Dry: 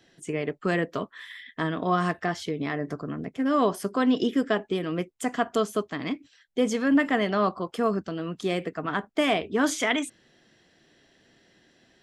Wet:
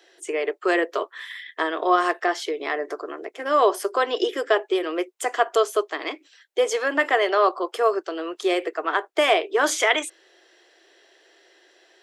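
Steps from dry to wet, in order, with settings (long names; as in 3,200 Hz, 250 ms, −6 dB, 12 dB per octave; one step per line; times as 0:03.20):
elliptic high-pass filter 350 Hz, stop band 40 dB
level +6.5 dB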